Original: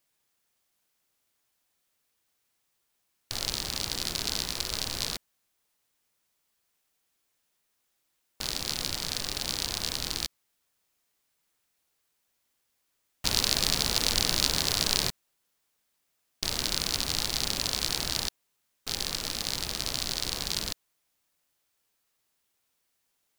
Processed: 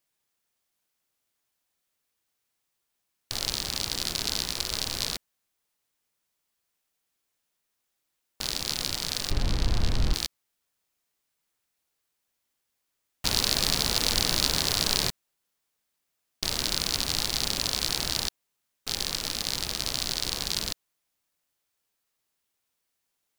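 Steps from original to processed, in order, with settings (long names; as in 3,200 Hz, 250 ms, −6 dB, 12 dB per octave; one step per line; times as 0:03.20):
0:09.31–0:10.14: RIAA equalisation playback
leveller curve on the samples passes 1
level −1.5 dB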